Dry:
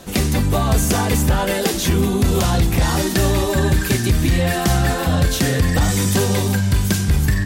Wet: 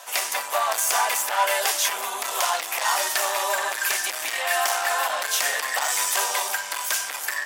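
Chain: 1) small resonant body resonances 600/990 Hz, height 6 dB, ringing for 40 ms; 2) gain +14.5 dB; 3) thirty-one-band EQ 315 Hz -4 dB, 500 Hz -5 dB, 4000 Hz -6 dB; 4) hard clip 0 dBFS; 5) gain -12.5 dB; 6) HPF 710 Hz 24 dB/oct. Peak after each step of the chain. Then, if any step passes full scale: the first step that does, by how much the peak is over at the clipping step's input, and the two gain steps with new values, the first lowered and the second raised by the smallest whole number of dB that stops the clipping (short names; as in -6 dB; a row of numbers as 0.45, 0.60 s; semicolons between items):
-6.5, +8.0, +7.5, 0.0, -12.5, -7.5 dBFS; step 2, 7.5 dB; step 2 +6.5 dB, step 5 -4.5 dB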